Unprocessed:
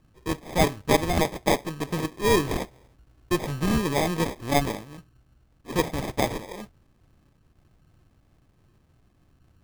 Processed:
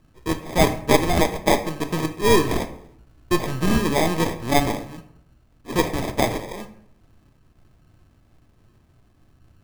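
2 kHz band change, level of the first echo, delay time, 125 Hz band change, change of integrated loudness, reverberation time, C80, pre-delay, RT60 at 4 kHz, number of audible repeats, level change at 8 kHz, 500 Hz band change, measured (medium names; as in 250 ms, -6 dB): +4.0 dB, no echo, no echo, +3.0 dB, +4.0 dB, 0.70 s, 15.5 dB, 3 ms, 0.45 s, no echo, +4.0 dB, +4.0 dB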